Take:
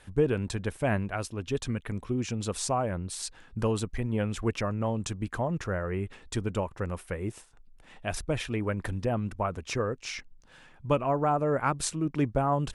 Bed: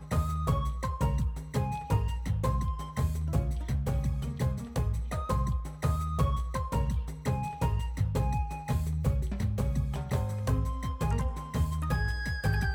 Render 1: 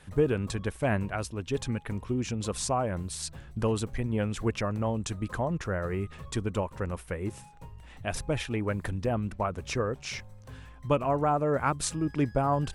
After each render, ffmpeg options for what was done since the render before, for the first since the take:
-filter_complex "[1:a]volume=-18dB[a];[0:a][a]amix=inputs=2:normalize=0"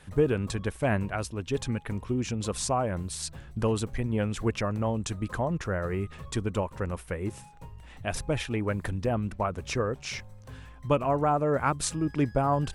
-af "volume=1dB"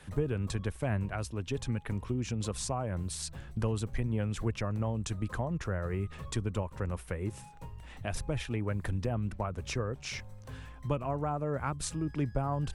-filter_complex "[0:a]acrossover=split=140[a][b];[b]acompressor=threshold=-38dB:ratio=2[c];[a][c]amix=inputs=2:normalize=0"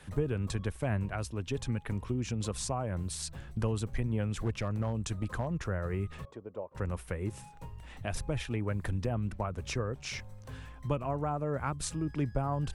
-filter_complex "[0:a]asettb=1/sr,asplit=3[a][b][c];[a]atrim=end=4.314[d];[b]atrim=start=4.31:end=5.55,asetpts=PTS-STARTPTS,afade=t=in:d=0.004:c=qsin,afade=t=out:st=1.236:d=0.004:c=qsin,asoftclip=type=hard:threshold=-25dB[e];[c]atrim=start=5.546[f];[d][e]acrossfade=d=0.004:c1=hsin:c2=qsin[g];[g][f]acrossfade=d=0.004:c1=qsin:c2=hsin,asettb=1/sr,asplit=3[h][i][j];[h]atrim=end=6.254[k];[i]atrim=start=6.25:end=6.75,asetpts=PTS-STARTPTS,afade=t=in:d=0.004:c=qsin,afade=t=out:st=0.496:d=0.004:c=qsin,bandpass=f=560:t=q:w=2.1[l];[j]atrim=start=6.746[m];[k][l]acrossfade=d=0.004:c1=hsin:c2=qsin[n];[n][m]acrossfade=d=0.004:c1=qsin:c2=hsin"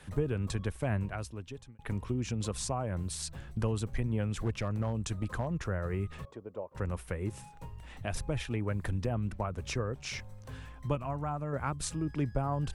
-filter_complex "[0:a]asettb=1/sr,asplit=3[a][b][c];[a]atrim=end=10.954[d];[b]atrim=start=10.95:end=11.53,asetpts=PTS-STARTPTS,afade=t=in:d=0.004:c=qsin,afade=t=out:st=0.576:d=0.004:c=qsin,equalizer=f=430:t=o:w=1:g=-8.5[e];[c]atrim=start=11.526[f];[d][e]acrossfade=d=0.004:c1=hsin:c2=qsin[g];[g][f]acrossfade=d=0.004:c1=qsin:c2=hsin,asplit=2[h][i];[h]atrim=end=1.79,asetpts=PTS-STARTPTS,afade=t=out:st=0.99:d=0.8[j];[i]atrim=start=1.79,asetpts=PTS-STARTPTS,afade=t=in:d=0.004:c=hsin[k];[j][k]concat=n=2:v=0:a=1"

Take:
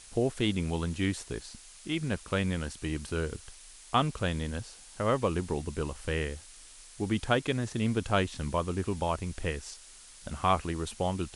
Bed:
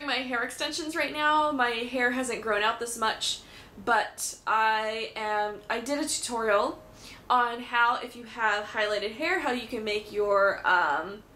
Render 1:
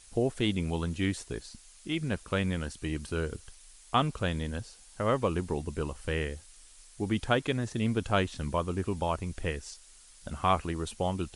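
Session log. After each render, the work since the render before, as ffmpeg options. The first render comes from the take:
-af "afftdn=nr=6:nf=-52"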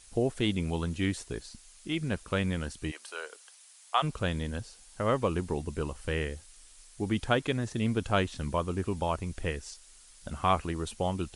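-filter_complex "[0:a]asplit=3[a][b][c];[a]afade=t=out:st=2.9:d=0.02[d];[b]highpass=f=580:w=0.5412,highpass=f=580:w=1.3066,afade=t=in:st=2.9:d=0.02,afade=t=out:st=4.02:d=0.02[e];[c]afade=t=in:st=4.02:d=0.02[f];[d][e][f]amix=inputs=3:normalize=0"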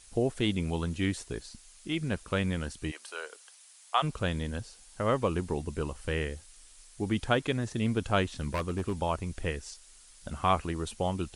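-filter_complex "[0:a]asettb=1/sr,asplit=3[a][b][c];[a]atrim=end=8.404[d];[b]atrim=start=8.4:end=8.93,asetpts=PTS-STARTPTS,afade=t=in:d=0.004:c=qsin,afade=t=out:st=0.526:d=0.004:c=qsin,aeval=exprs='0.0668*(abs(mod(val(0)/0.0668+3,4)-2)-1)':c=same[e];[c]atrim=start=8.926[f];[d][e]acrossfade=d=0.004:c1=hsin:c2=qsin[g];[g][f]acrossfade=d=0.004:c1=qsin:c2=hsin"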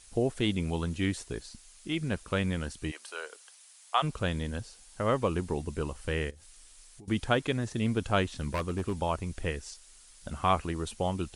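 -filter_complex "[0:a]asettb=1/sr,asplit=3[a][b][c];[a]atrim=end=6.304[d];[b]atrim=start=6.3:end=7.08,asetpts=PTS-STARTPTS,afade=t=in:d=0.004:c=qsin,afade=t=out:st=0.776:d=0.004:c=qsin,acompressor=threshold=-47dB:ratio=16:attack=3.2:release=140:knee=1:detection=peak[e];[c]atrim=start=7.076[f];[d][e]acrossfade=d=0.004:c1=hsin:c2=qsin[g];[g][f]acrossfade=d=0.004:c1=qsin:c2=hsin"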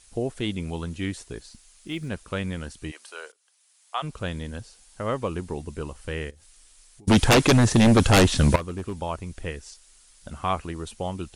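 -filter_complex "[0:a]asettb=1/sr,asplit=3[a][b][c];[a]atrim=end=1.464[d];[b]atrim=start=1.46:end=2.09,asetpts=PTS-STARTPTS,afade=t=in:d=0.004:c=qsin,afade=t=out:st=0.626:d=0.004:c=qsin,acrusher=bits=9:mode=log:mix=0:aa=0.000001[e];[c]atrim=start=2.086[f];[d][e]acrossfade=d=0.004:c1=hsin:c2=qsin[g];[g][f]acrossfade=d=0.004:c1=qsin:c2=hsin,asettb=1/sr,asplit=3[h][i][j];[h]atrim=end=7.074[k];[i]atrim=start=7.07:end=8.56,asetpts=PTS-STARTPTS,afade=t=in:d=0.004:c=qsin,afade=t=out:st=1.486:d=0.004:c=qsin,aeval=exprs='0.266*sin(PI/2*5.01*val(0)/0.266)':c=same[l];[j]atrim=start=8.556[m];[k][l]acrossfade=d=0.004:c1=hsin:c2=qsin[n];[n][m]acrossfade=d=0.004:c1=qsin:c2=hsin,asplit=2[o][p];[o]atrim=end=3.32,asetpts=PTS-STARTPTS,afade=t=out:st=3.316:d=0.004:c=hsin:silence=0.0944061[q];[p]atrim=start=3.32,asetpts=PTS-STARTPTS,afade=t=in:d=0.94:silence=0.0944061[r];[q][r]concat=n=2:v=0:a=1"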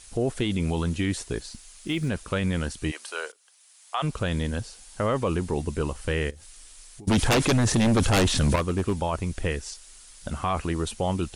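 -af "acontrast=67,alimiter=limit=-16.5dB:level=0:latency=1:release=15"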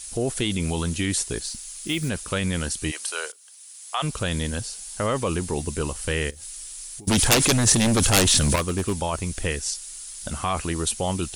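-af "crystalizer=i=3:c=0"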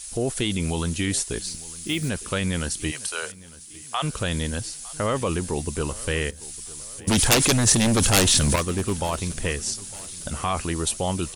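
-af "aecho=1:1:906|1812|2718:0.0891|0.0428|0.0205"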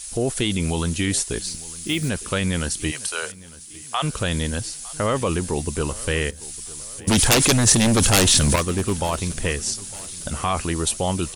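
-af "volume=2.5dB,alimiter=limit=-1dB:level=0:latency=1"

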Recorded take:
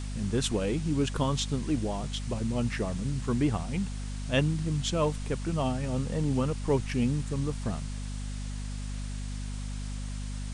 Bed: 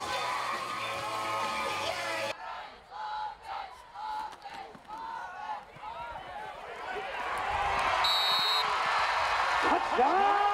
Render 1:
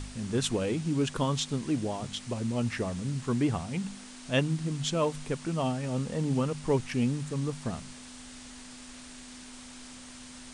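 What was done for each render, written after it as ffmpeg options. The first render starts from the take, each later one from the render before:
-af "bandreject=f=50:t=h:w=4,bandreject=f=100:t=h:w=4,bandreject=f=150:t=h:w=4,bandreject=f=200:t=h:w=4"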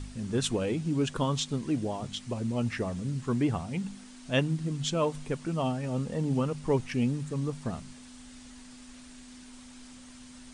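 -af "afftdn=nr=6:nf=-47"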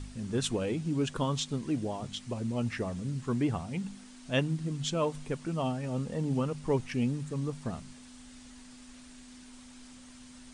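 -af "volume=-2dB"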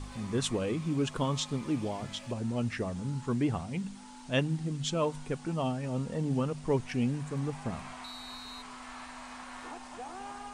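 -filter_complex "[1:a]volume=-18dB[a];[0:a][a]amix=inputs=2:normalize=0"

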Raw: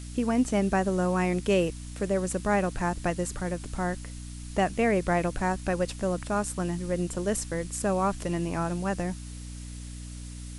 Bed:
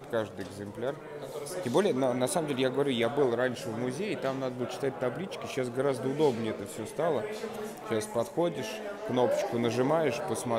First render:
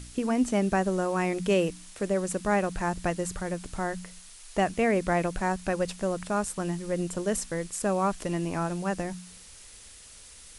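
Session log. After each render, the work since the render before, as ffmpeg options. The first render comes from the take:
-af "bandreject=f=60:t=h:w=4,bandreject=f=120:t=h:w=4,bandreject=f=180:t=h:w=4,bandreject=f=240:t=h:w=4,bandreject=f=300:t=h:w=4"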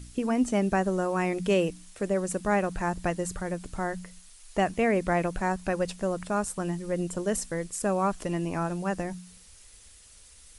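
-af "afftdn=nr=6:nf=-49"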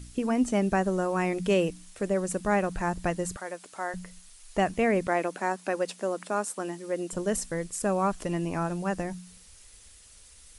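-filter_complex "[0:a]asettb=1/sr,asplit=3[a][b][c];[a]atrim=end=3.364[d];[b]atrim=start=3.36:end=3.94,asetpts=PTS-STARTPTS,afade=t=in:d=0.004:c=qsin,afade=t=out:st=0.576:d=0.004:c=qsin,highpass=510[e];[c]atrim=start=3.936[f];[d][e]acrossfade=d=0.004:c1=hsin:c2=qsin[g];[g][f]acrossfade=d=0.004:c1=qsin:c2=hsin,asettb=1/sr,asplit=3[h][i][j];[h]atrim=end=5.074[k];[i]atrim=start=5.07:end=7.13,asetpts=PTS-STARTPTS,afade=t=in:d=0.004:c=qsin,afade=t=out:st=2.056:d=0.004:c=qsin,highpass=f=240:w=0.5412,highpass=f=240:w=1.3066[l];[j]atrim=start=7.126[m];[k][l]acrossfade=d=0.004:c1=hsin:c2=qsin[n];[n][m]acrossfade=d=0.004:c1=qsin:c2=hsin"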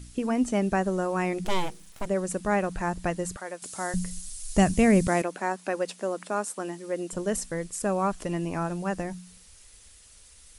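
-filter_complex "[0:a]asplit=3[a][b][c];[a]afade=t=out:st=1.44:d=0.02[d];[b]aeval=exprs='abs(val(0))':c=same,afade=t=in:st=1.44:d=0.02,afade=t=out:st=2.05:d=0.02[e];[c]afade=t=in:st=2.05:d=0.02[f];[d][e][f]amix=inputs=3:normalize=0,asettb=1/sr,asplit=3[g][h][i];[g]atrim=end=3.624[j];[h]atrim=start=3.62:end=5.22,asetpts=PTS-STARTPTS,afade=t=in:d=0.004:c=qsin,afade=t=out:st=1.596:d=0.004:c=qsin,bass=f=250:g=14,treble=f=4k:g=14[k];[i]atrim=start=5.216[l];[j][k]acrossfade=d=0.004:c1=hsin:c2=qsin[m];[m][l]acrossfade=d=0.004:c1=qsin:c2=hsin"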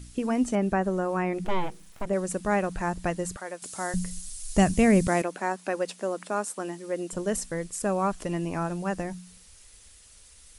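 -filter_complex "[0:a]asettb=1/sr,asplit=3[a][b][c];[a]atrim=end=0.554[d];[b]atrim=start=0.55:end=2.13,asetpts=PTS-STARTPTS,afade=t=in:d=0.004:c=qsin,afade=t=out:st=1.576:d=0.004:c=qsin,acrossover=split=2600[e][f];[f]acompressor=threshold=-53dB:ratio=4:attack=1:release=60[g];[e][g]amix=inputs=2:normalize=0[h];[c]atrim=start=2.126[i];[d][h]acrossfade=d=0.004:c1=hsin:c2=qsin[j];[j][i]acrossfade=d=0.004:c1=qsin:c2=hsin"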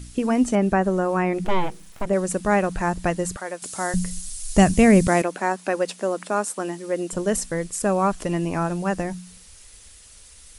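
-af "volume=5.5dB"

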